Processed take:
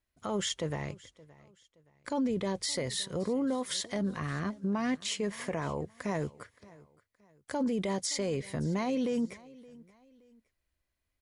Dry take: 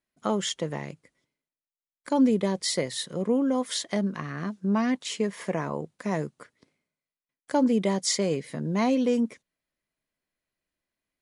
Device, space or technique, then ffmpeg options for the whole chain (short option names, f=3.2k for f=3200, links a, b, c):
car stereo with a boomy subwoofer: -filter_complex "[0:a]asettb=1/sr,asplit=3[a][b][c];[a]atrim=end=0.824[d];[b]atrim=start=0.82:end=2.55,asetpts=PTS-STARTPTS,afade=t=in:d=0.004:c=qsin,afade=t=out:st=1.726:d=0.004:c=qsin,lowpass=8.7k[e];[c]atrim=start=2.546[f];[d][e]acrossfade=d=0.004:c1=hsin:c2=qsin[g];[g][f]acrossfade=d=0.004:c1=qsin:c2=hsin,lowshelf=f=120:t=q:w=1.5:g=12,alimiter=limit=-24dB:level=0:latency=1:release=15,aecho=1:1:571|1142:0.0794|0.0278"